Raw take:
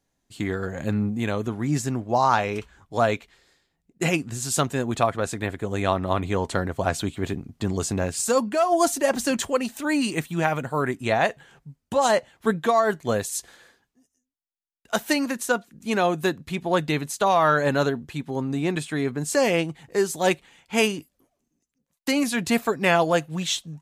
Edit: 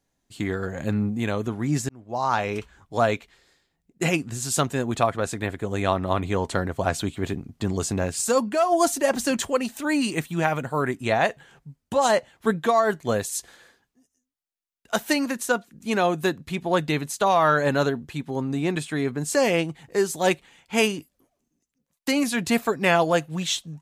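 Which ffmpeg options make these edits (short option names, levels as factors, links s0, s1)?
-filter_complex "[0:a]asplit=2[s0][s1];[s0]atrim=end=1.89,asetpts=PTS-STARTPTS,afade=t=out:st=1.886:d=0.004:c=hsin[s2];[s1]atrim=start=1.89,asetpts=PTS-STARTPTS,afade=t=in:d=0.62[s3];[s2][s3]concat=n=2:v=0:a=1"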